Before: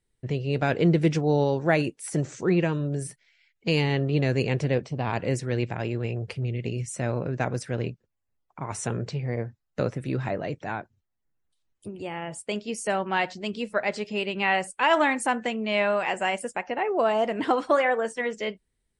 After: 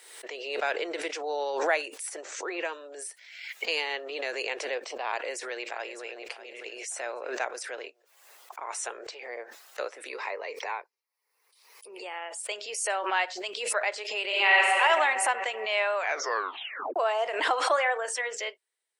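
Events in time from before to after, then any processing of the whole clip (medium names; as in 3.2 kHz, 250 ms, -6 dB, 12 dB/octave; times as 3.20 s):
2.09–2.65 s: treble shelf 4.6 kHz -7.5 dB
5.11–6.25 s: echo throw 600 ms, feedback 35%, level -13 dB
10.09–12.04 s: rippled EQ curve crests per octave 0.87, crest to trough 10 dB
14.25–14.68 s: reverb throw, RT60 2.3 s, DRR -5.5 dB
15.95 s: tape stop 1.01 s
whole clip: Bessel high-pass 750 Hz, order 8; swell ahead of each attack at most 53 dB/s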